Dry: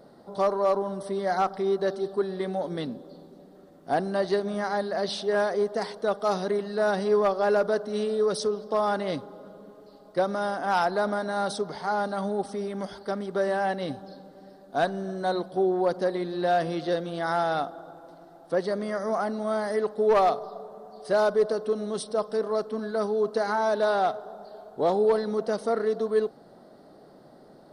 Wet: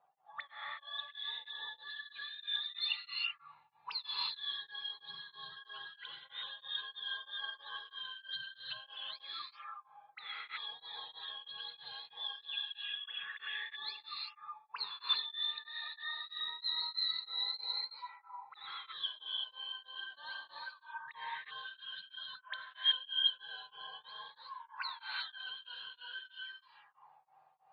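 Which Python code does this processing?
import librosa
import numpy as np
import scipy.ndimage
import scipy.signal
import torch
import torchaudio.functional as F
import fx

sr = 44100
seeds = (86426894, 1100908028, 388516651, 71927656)

y = fx.octave_mirror(x, sr, pivot_hz=820.0)
y = fx.noise_reduce_blind(y, sr, reduce_db=6)
y = fx.bass_treble(y, sr, bass_db=14, treble_db=11, at=(3.05, 4.14))
y = fx.auto_swell(y, sr, attack_ms=428.0, at=(21.88, 22.52))
y = fx.high_shelf_res(y, sr, hz=5300.0, db=-11.0, q=1.5)
y = fx.auto_wah(y, sr, base_hz=710.0, top_hz=4200.0, q=22.0, full_db=-29.5, direction='up')
y = fx.rev_gated(y, sr, seeds[0], gate_ms=400, shape='rising', drr_db=-3.0)
y = y * np.abs(np.cos(np.pi * 3.1 * np.arange(len(y)) / sr))
y = y * 10.0 ** (11.5 / 20.0)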